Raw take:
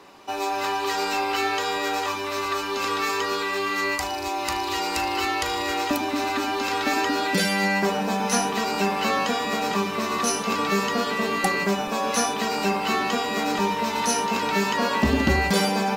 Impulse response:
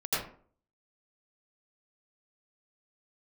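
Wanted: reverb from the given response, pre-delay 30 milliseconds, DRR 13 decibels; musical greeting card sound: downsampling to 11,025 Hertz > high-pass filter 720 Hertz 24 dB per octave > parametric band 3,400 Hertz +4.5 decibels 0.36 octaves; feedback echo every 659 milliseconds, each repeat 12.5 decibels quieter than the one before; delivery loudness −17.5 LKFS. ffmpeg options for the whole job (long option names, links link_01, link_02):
-filter_complex "[0:a]aecho=1:1:659|1318|1977:0.237|0.0569|0.0137,asplit=2[link_01][link_02];[1:a]atrim=start_sample=2205,adelay=30[link_03];[link_02][link_03]afir=irnorm=-1:irlink=0,volume=-21dB[link_04];[link_01][link_04]amix=inputs=2:normalize=0,aresample=11025,aresample=44100,highpass=frequency=720:width=0.5412,highpass=frequency=720:width=1.3066,equalizer=frequency=3400:width_type=o:width=0.36:gain=4.5,volume=7.5dB"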